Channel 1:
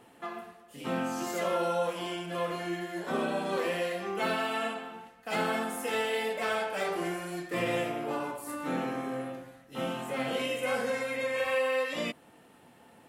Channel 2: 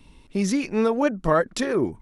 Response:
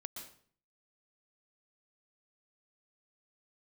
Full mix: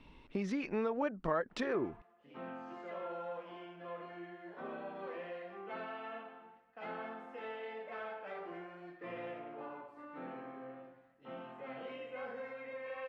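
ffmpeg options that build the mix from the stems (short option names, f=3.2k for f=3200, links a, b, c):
-filter_complex "[0:a]aemphasis=mode=reproduction:type=75fm,asoftclip=type=tanh:threshold=-20.5dB,adelay=1500,volume=-11dB[a];[1:a]acompressor=threshold=-29dB:ratio=4,volume=-1dB[b];[a][b]amix=inputs=2:normalize=0,lowpass=2.6k,lowshelf=f=260:g=-9"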